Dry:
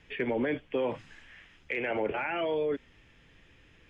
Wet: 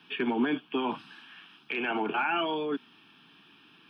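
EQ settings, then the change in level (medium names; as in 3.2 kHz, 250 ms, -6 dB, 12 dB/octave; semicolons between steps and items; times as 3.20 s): high-pass 200 Hz 24 dB/octave; static phaser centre 2 kHz, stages 6; +8.5 dB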